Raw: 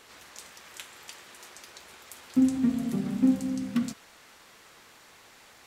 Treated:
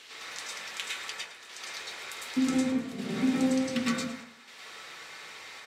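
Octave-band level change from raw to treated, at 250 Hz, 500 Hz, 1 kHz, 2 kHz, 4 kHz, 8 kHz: -2.5, +7.0, +7.0, +10.0, +9.5, +5.0 dB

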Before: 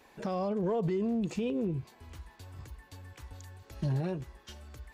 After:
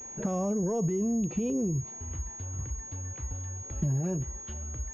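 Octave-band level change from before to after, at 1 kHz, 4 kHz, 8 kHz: -1.5 dB, n/a, +22.5 dB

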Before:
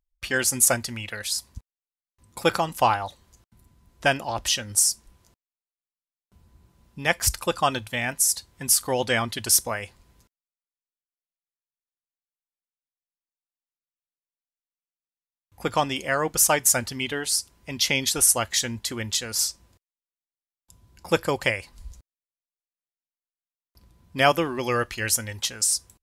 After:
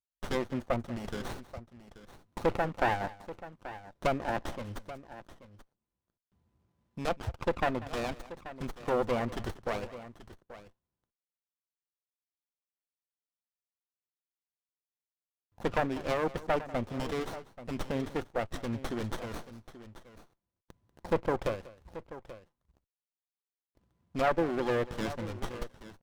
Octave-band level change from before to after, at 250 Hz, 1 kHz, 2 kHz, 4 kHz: -3.0, -7.5, -12.0, -19.0 dB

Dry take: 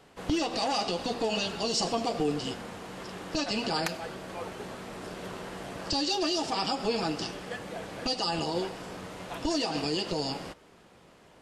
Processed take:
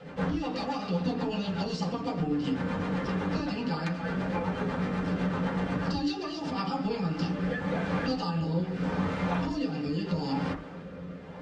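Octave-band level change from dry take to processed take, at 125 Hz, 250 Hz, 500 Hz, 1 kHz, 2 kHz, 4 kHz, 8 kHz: +10.0 dB, +5.0 dB, -1.5 dB, -1.0 dB, +0.5 dB, -9.0 dB, under -10 dB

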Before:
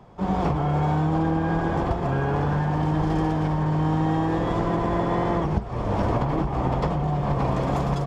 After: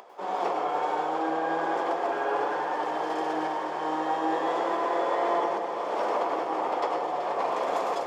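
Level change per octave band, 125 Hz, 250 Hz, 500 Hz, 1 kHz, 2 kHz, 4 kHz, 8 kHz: -33.0 dB, -11.5 dB, -0.5 dB, +1.0 dB, 0.0 dB, 0.0 dB, n/a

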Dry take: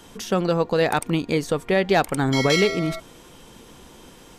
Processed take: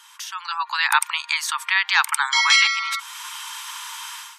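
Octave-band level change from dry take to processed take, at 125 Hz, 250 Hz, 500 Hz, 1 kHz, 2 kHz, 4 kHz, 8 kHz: under -40 dB, under -40 dB, under -40 dB, +3.0 dB, +8.5 dB, +8.5 dB, +8.5 dB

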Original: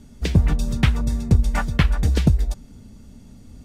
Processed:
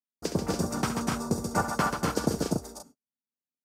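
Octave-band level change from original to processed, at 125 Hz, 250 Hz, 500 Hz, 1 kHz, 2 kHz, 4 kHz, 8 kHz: -14.5, -5.0, +2.0, +3.0, -5.0, -5.0, +3.5 dB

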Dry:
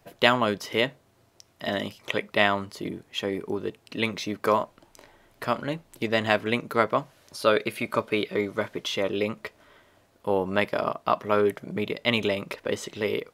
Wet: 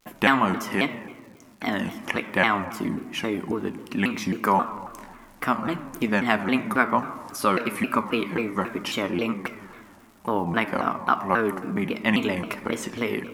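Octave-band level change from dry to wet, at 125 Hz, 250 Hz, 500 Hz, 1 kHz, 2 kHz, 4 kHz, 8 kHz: +3.0, +5.5, -3.0, +4.0, +2.5, -3.0, +3.5 dB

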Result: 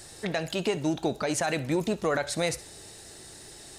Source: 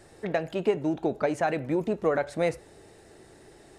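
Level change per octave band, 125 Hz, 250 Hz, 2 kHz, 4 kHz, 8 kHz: +2.0, 0.0, +2.0, +11.0, +15.0 dB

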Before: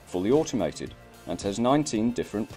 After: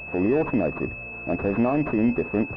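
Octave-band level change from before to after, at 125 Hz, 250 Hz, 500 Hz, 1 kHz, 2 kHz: +4.0, +3.5, +1.5, -0.5, +10.0 dB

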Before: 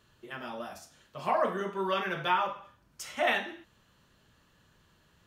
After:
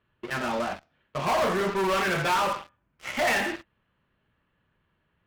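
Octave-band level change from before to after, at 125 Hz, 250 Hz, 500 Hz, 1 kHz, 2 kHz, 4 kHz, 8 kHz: +9.0, +7.5, +5.0, +4.0, +6.0, +5.0, +10.0 dB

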